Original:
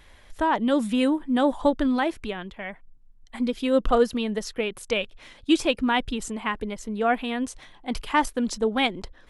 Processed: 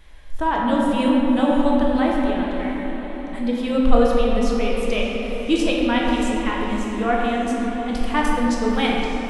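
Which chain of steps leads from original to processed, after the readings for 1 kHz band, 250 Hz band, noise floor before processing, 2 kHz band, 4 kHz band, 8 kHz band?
+4.0 dB, +5.5 dB, -52 dBFS, +3.0 dB, +2.0 dB, +0.5 dB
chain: low shelf 67 Hz +9 dB; on a send: diffused feedback echo 0.598 s, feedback 49%, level -11 dB; on the sum: shoebox room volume 180 m³, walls hard, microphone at 0.64 m; gain -2 dB

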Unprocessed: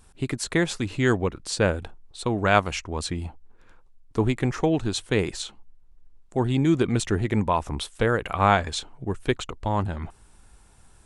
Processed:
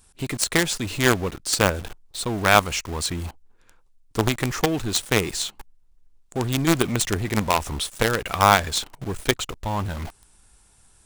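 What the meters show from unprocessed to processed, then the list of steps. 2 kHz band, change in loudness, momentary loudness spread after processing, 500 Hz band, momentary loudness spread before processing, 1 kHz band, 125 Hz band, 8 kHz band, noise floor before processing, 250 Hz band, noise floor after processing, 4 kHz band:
+4.5 dB, +2.5 dB, 14 LU, 0.0 dB, 12 LU, +3.0 dB, -0.5 dB, +9.0 dB, -54 dBFS, -1.0 dB, -57 dBFS, +7.0 dB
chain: high shelf 3000 Hz +10 dB; in parallel at -3.5 dB: companded quantiser 2-bit; on the sum: gain -5 dB

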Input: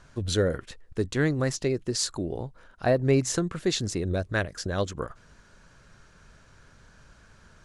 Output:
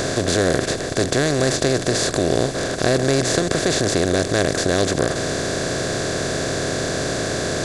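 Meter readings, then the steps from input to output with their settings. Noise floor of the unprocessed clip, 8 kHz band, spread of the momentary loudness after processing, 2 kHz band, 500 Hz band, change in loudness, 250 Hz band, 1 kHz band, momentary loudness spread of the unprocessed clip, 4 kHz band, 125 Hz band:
-56 dBFS, +11.5 dB, 4 LU, +11.5 dB, +9.5 dB, +7.5 dB, +8.5 dB, +12.0 dB, 13 LU, +12.0 dB, +6.0 dB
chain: per-bin compression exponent 0.2; high shelf 7900 Hz +4 dB; gain -1 dB

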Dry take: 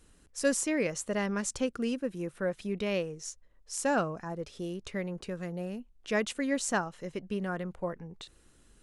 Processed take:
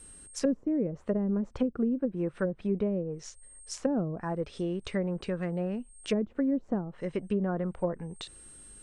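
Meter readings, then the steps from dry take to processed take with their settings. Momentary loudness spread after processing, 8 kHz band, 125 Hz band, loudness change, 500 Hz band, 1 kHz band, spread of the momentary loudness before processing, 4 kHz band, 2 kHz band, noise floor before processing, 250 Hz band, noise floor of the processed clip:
12 LU, -9.0 dB, +5.0 dB, +1.5 dB, +1.0 dB, -5.0 dB, 12 LU, -3.5 dB, -9.5 dB, -62 dBFS, +4.5 dB, -55 dBFS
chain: whine 8500 Hz -54 dBFS; treble ducked by the level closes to 330 Hz, closed at -27 dBFS; gain +5 dB

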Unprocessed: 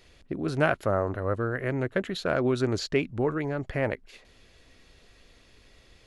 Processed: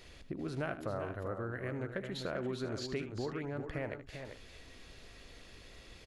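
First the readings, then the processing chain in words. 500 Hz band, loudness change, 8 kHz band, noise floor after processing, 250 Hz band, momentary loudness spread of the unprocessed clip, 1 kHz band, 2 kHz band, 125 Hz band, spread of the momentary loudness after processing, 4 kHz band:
-11.5 dB, -11.5 dB, -8.5 dB, -55 dBFS, -10.5 dB, 6 LU, -12.0 dB, -11.5 dB, -10.0 dB, 16 LU, -8.0 dB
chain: compressor 2.5:1, threshold -45 dBFS, peak gain reduction 17.5 dB; on a send: tapped delay 77/377/393/439 ms -12.5/-19/-8/-18.5 dB; on the sum: gain +2 dB

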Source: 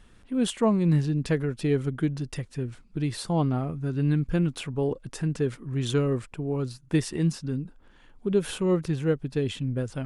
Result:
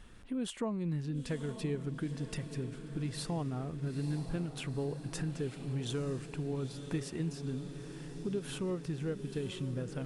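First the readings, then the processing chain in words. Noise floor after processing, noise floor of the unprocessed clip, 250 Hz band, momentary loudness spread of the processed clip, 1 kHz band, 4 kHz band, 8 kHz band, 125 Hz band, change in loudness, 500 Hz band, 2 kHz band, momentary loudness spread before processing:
-48 dBFS, -55 dBFS, -10.5 dB, 4 LU, -11.0 dB, -7.5 dB, -7.0 dB, -9.5 dB, -10.5 dB, -11.0 dB, -9.0 dB, 9 LU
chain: compressor 3:1, threshold -37 dBFS, peak gain reduction 14.5 dB; diffused feedback echo 0.925 s, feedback 66%, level -10 dB

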